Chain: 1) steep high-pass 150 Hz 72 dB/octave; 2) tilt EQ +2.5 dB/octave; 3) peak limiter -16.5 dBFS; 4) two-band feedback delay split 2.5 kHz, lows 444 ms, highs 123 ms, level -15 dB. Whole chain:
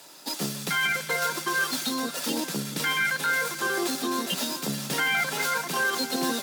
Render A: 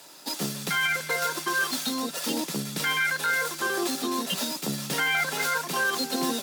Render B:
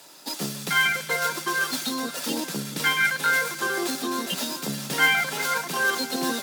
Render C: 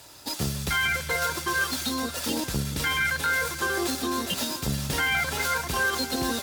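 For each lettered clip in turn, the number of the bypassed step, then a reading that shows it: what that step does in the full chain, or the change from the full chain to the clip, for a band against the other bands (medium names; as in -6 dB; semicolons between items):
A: 4, echo-to-direct -13.5 dB to none; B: 3, crest factor change +6.5 dB; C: 1, 125 Hz band +7.0 dB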